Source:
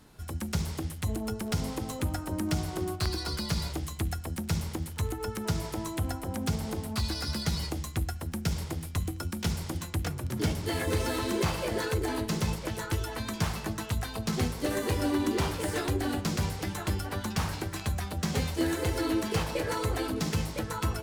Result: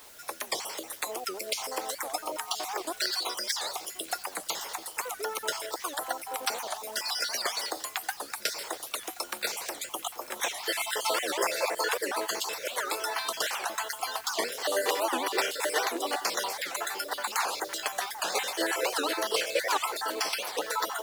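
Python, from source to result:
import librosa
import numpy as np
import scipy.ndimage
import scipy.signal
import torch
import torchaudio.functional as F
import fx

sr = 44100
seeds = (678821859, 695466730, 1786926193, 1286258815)

y = fx.spec_dropout(x, sr, seeds[0], share_pct=37)
y = scipy.signal.sosfilt(scipy.signal.butter(4, 510.0, 'highpass', fs=sr, output='sos'), y)
y = fx.quant_dither(y, sr, seeds[1], bits=10, dither='triangular')
y = y + 10.0 ** (-18.5 / 20.0) * np.pad(y, (int(1078 * sr / 1000.0), 0))[:len(y)]
y = fx.record_warp(y, sr, rpm=78.0, depth_cents=250.0)
y = F.gain(torch.from_numpy(y), 8.0).numpy()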